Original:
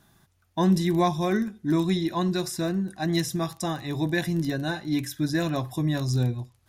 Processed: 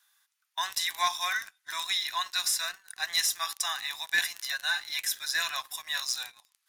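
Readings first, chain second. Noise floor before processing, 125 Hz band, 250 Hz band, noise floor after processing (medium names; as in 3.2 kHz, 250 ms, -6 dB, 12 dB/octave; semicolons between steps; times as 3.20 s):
-67 dBFS, under -40 dB, under -40 dB, -79 dBFS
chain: Bessel high-pass 1.7 kHz, order 6; waveshaping leveller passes 2; harmonic-percussive split harmonic +3 dB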